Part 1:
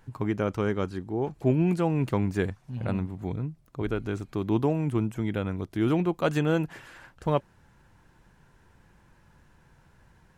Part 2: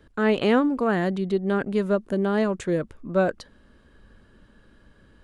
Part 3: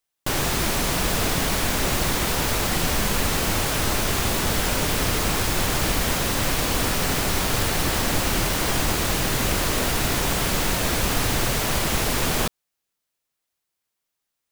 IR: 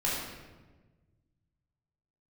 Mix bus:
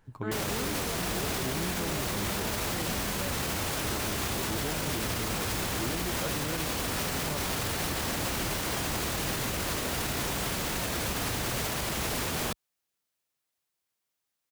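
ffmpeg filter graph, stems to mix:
-filter_complex "[0:a]volume=-6dB[link_01];[1:a]adelay=50,volume=-12.5dB[link_02];[2:a]highpass=48,adelay=50,volume=-2.5dB[link_03];[link_01][link_02][link_03]amix=inputs=3:normalize=0,alimiter=limit=-22dB:level=0:latency=1"

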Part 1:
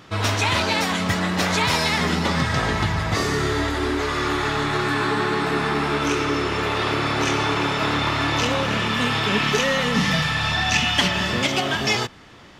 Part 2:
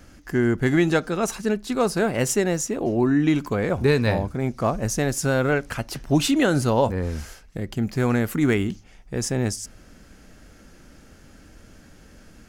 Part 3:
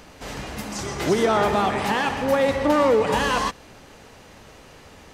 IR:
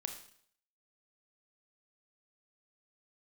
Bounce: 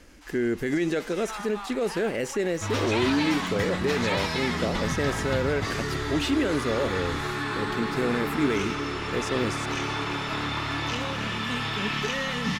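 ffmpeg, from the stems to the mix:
-filter_complex "[0:a]adelay=2500,volume=-7dB[link_01];[1:a]equalizer=frequency=125:width_type=o:width=1:gain=-9,equalizer=frequency=500:width_type=o:width=1:gain=10,equalizer=frequency=1000:width_type=o:width=1:gain=-11,equalizer=frequency=2000:width_type=o:width=1:gain=5,volume=-3dB[link_02];[2:a]highpass=frequency=820:width=0.5412,highpass=frequency=820:width=1.3066,volume=-12.5dB[link_03];[link_02][link_03]amix=inputs=2:normalize=0,alimiter=limit=-16.5dB:level=0:latency=1:release=34,volume=0dB[link_04];[link_01][link_04]amix=inputs=2:normalize=0,acrossover=split=4600[link_05][link_06];[link_06]acompressor=threshold=-40dB:ratio=4:attack=1:release=60[link_07];[link_05][link_07]amix=inputs=2:normalize=0,equalizer=frequency=560:width_type=o:width=0.92:gain=-4"

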